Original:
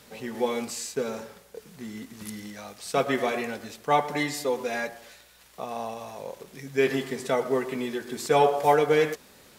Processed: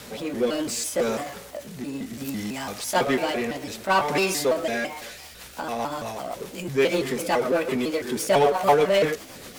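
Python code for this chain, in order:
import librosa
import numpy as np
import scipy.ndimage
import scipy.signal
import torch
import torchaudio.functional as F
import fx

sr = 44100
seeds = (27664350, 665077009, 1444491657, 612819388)

y = fx.pitch_trill(x, sr, semitones=4.5, every_ms=167)
y = fx.rotary_switch(y, sr, hz=0.65, then_hz=8.0, switch_at_s=4.66)
y = fx.power_curve(y, sr, exponent=0.7)
y = y * librosa.db_to_amplitude(1.5)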